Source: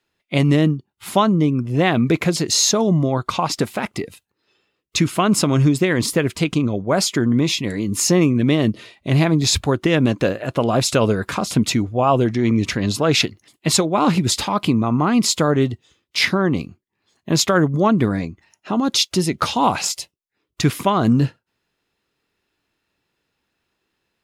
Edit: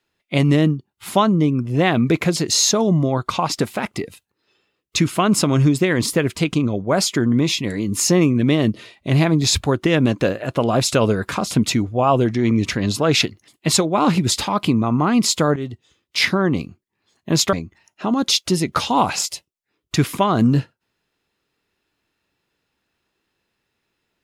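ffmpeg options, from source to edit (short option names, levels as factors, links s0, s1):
-filter_complex "[0:a]asplit=3[s0][s1][s2];[s0]atrim=end=15.56,asetpts=PTS-STARTPTS,afade=t=out:st=15.556:d=0.004:c=hsin:silence=0.211349[s3];[s1]atrim=start=15.56:end=17.532,asetpts=PTS-STARTPTS,afade=t=in:d=0.65:c=qsin:silence=0.211349[s4];[s2]atrim=start=18.188[s5];[s3][s4]concat=n=2:v=0:a=1[s6];[s6][s5]acrossfade=d=0.004:c1=hsin:c2=hsin"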